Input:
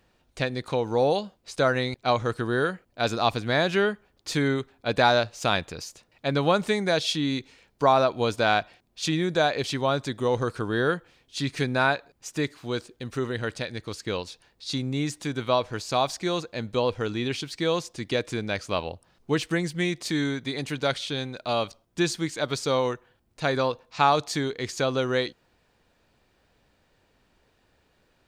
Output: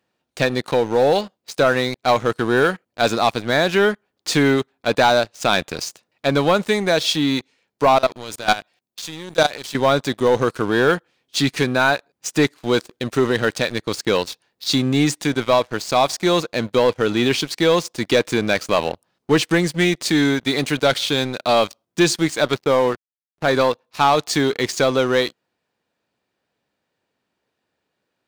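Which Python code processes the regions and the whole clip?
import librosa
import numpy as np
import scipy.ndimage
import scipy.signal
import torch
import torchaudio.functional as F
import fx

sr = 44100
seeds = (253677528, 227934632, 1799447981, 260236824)

y = fx.chain(x, sr, fx.high_shelf(hz=4900.0, db=11.0),
    fx.level_steps(step_db=20), at=(7.96, 9.75))
y = fx.chain(y, sr, fx.lowpass(hz=2900.0, slope=12),
    fx.backlash(play_db=-35.5), at=(22.54, 23.48))
y = scipy.signal.sosfilt(scipy.signal.butter(2, 150.0, 'highpass', fs=sr, output='sos'), y)
y = fx.rider(y, sr, range_db=3, speed_s=0.5)
y = fx.leveller(y, sr, passes=3)
y = y * librosa.db_to_amplitude(-2.0)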